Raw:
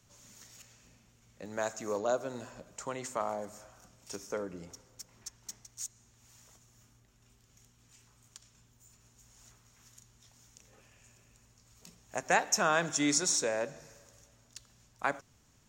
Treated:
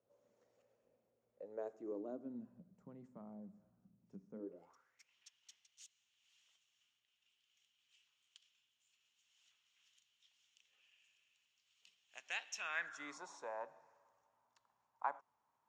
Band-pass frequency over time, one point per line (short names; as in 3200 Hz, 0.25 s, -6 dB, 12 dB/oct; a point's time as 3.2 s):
band-pass, Q 5.1
1.45 s 520 Hz
2.56 s 190 Hz
4.33 s 190 Hz
4.66 s 930 Hz
5.13 s 3000 Hz
12.55 s 3000 Hz
13.22 s 930 Hz